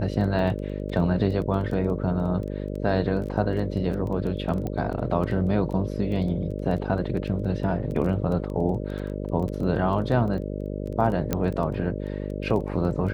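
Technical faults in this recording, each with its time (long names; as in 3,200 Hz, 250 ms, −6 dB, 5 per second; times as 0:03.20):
mains buzz 50 Hz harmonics 12 −31 dBFS
surface crackle 12 per second −31 dBFS
0:04.67: click −19 dBFS
0:11.33: click −10 dBFS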